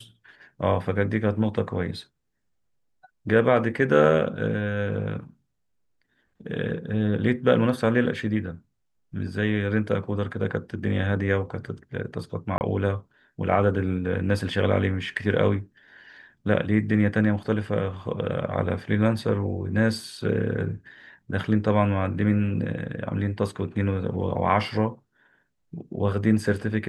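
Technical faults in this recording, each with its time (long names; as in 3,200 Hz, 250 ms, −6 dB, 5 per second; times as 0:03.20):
0:12.58–0:12.61: drop-out 29 ms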